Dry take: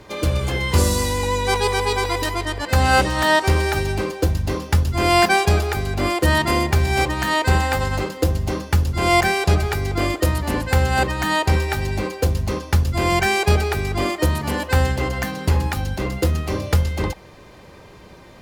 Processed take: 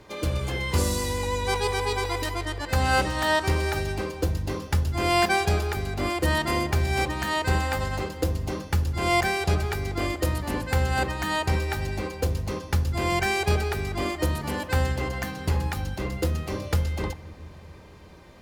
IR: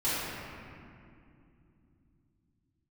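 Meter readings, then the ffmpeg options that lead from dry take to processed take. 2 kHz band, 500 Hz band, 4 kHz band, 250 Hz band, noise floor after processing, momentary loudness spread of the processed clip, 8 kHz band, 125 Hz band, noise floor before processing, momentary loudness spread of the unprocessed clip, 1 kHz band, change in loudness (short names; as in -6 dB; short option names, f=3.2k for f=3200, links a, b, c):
-6.0 dB, -6.0 dB, -6.0 dB, -6.0 dB, -45 dBFS, 7 LU, -6.0 dB, -6.5 dB, -44 dBFS, 7 LU, -6.5 dB, -6.5 dB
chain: -filter_complex "[0:a]asplit=2[a][b];[1:a]atrim=start_sample=2205[c];[b][c]afir=irnorm=-1:irlink=0,volume=-26.5dB[d];[a][d]amix=inputs=2:normalize=0,volume=-6.5dB"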